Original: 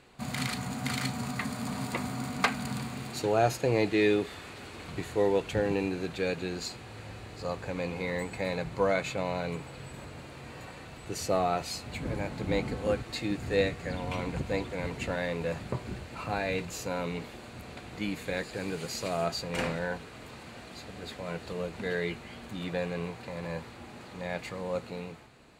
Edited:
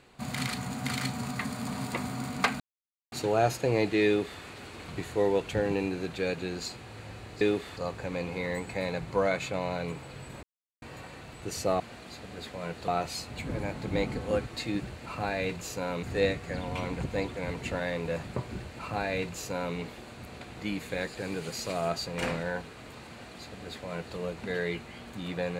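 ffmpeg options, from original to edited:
ffmpeg -i in.wav -filter_complex "[0:a]asplit=11[link_01][link_02][link_03][link_04][link_05][link_06][link_07][link_08][link_09][link_10][link_11];[link_01]atrim=end=2.6,asetpts=PTS-STARTPTS,afade=type=out:start_time=2.596:duration=0.004:curve=hsin[link_12];[link_02]atrim=start=2.6:end=3.12,asetpts=PTS-STARTPTS,volume=0[link_13];[link_03]atrim=start=3.12:end=7.412,asetpts=PTS-STARTPTS,afade=type=in:duration=0.004:curve=hsin[link_14];[link_04]atrim=start=4.058:end=4.422[link_15];[link_05]atrim=start=7.408:end=10.07,asetpts=PTS-STARTPTS,afade=type=out:start_time=2.658:duration=0.004:curve=hsin[link_16];[link_06]atrim=start=10.07:end=10.46,asetpts=PTS-STARTPTS,volume=0[link_17];[link_07]atrim=start=10.46:end=11.442,asetpts=PTS-STARTPTS,afade=type=in:duration=0.004:curve=hsin[link_18];[link_08]atrim=start=20.448:end=21.532[link_19];[link_09]atrim=start=11.438:end=13.392[link_20];[link_10]atrim=start=15.918:end=17.122[link_21];[link_11]atrim=start=13.388[link_22];[link_12][link_13][link_14]concat=n=3:v=0:a=1[link_23];[link_23][link_15]acrossfade=duration=0.004:curve1=hsin:curve2=hsin[link_24];[link_16][link_17][link_18]concat=n=3:v=0:a=1[link_25];[link_24][link_25]acrossfade=duration=0.004:curve1=hsin:curve2=hsin[link_26];[link_26][link_19]acrossfade=duration=0.004:curve1=hsin:curve2=hsin[link_27];[link_27][link_20]acrossfade=duration=0.004:curve1=hsin:curve2=hsin[link_28];[link_28][link_21]acrossfade=duration=0.004:curve1=hsin:curve2=hsin[link_29];[link_29][link_22]acrossfade=duration=0.004:curve1=hsin:curve2=hsin" out.wav

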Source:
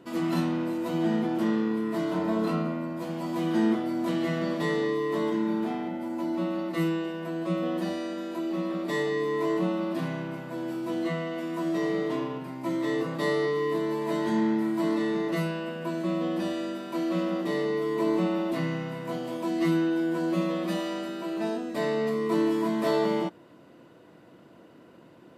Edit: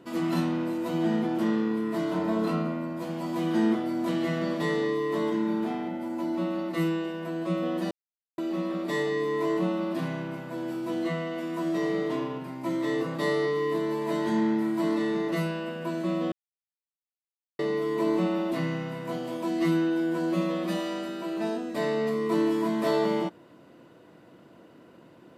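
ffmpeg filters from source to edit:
ffmpeg -i in.wav -filter_complex "[0:a]asplit=5[link_01][link_02][link_03][link_04][link_05];[link_01]atrim=end=7.91,asetpts=PTS-STARTPTS,afade=type=out:start_time=7.906:duration=0.004:curve=hsin[link_06];[link_02]atrim=start=7.91:end=8.38,asetpts=PTS-STARTPTS,volume=0[link_07];[link_03]atrim=start=8.38:end=16.32,asetpts=PTS-STARTPTS,afade=type=in:duration=0.004:curve=hsin,afade=type=out:start_time=7.936:duration=0.004:curve=hsin[link_08];[link_04]atrim=start=16.32:end=17.59,asetpts=PTS-STARTPTS,volume=0[link_09];[link_05]atrim=start=17.59,asetpts=PTS-STARTPTS,afade=type=in:duration=0.004:curve=hsin[link_10];[link_06][link_07][link_08][link_09][link_10]concat=n=5:v=0:a=1" out.wav

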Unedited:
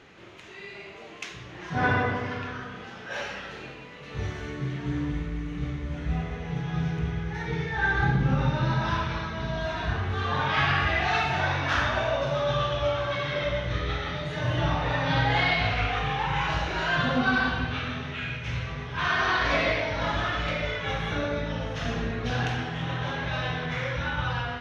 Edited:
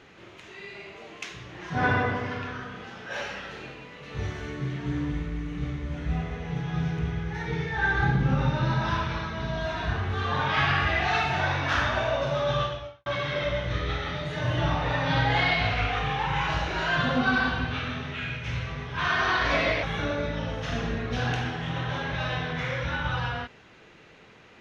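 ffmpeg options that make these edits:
ffmpeg -i in.wav -filter_complex "[0:a]asplit=3[link_01][link_02][link_03];[link_01]atrim=end=13.06,asetpts=PTS-STARTPTS,afade=type=out:start_time=12.62:duration=0.44:curve=qua[link_04];[link_02]atrim=start=13.06:end=19.832,asetpts=PTS-STARTPTS,afade=type=in:duration=0.004:curve=hsin[link_05];[link_03]atrim=start=20.958[link_06];[link_04][link_05]concat=n=2:v=0:a=1[link_07];[link_07][link_06]acrossfade=duration=0.004:curve1=hsin:curve2=hsin" out.wav

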